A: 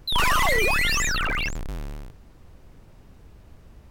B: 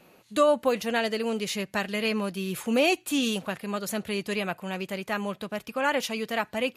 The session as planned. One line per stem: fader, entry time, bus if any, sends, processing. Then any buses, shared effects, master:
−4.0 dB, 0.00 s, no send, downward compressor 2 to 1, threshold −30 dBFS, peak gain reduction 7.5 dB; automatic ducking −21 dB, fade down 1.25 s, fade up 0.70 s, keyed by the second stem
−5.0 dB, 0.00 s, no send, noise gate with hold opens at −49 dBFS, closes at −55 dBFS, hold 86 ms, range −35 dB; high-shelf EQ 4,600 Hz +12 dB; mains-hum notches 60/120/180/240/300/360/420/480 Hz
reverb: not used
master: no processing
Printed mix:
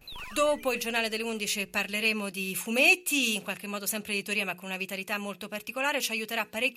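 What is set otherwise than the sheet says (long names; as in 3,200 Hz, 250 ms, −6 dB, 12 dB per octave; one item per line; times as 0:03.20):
stem A −4.0 dB → −12.0 dB
master: extra parametric band 2,600 Hz +11.5 dB 0.2 octaves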